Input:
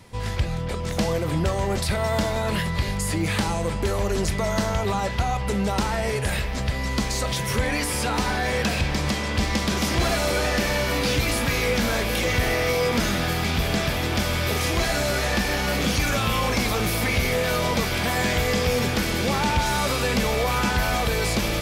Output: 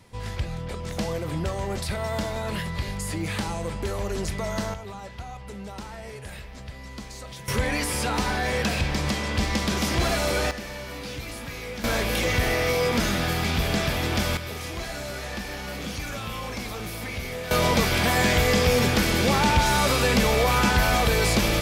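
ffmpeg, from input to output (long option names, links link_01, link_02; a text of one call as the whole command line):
ffmpeg -i in.wav -af "asetnsamples=nb_out_samples=441:pad=0,asendcmd='4.74 volume volume -14dB;7.48 volume volume -1.5dB;10.51 volume volume -12.5dB;11.84 volume volume -1dB;14.37 volume volume -10dB;17.51 volume volume 2dB',volume=-5dB" out.wav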